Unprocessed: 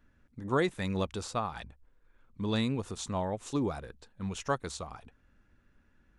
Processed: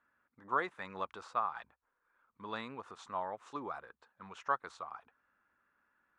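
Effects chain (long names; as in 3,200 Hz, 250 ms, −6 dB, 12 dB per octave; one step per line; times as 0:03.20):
resonant band-pass 1,200 Hz, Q 2
level +2.5 dB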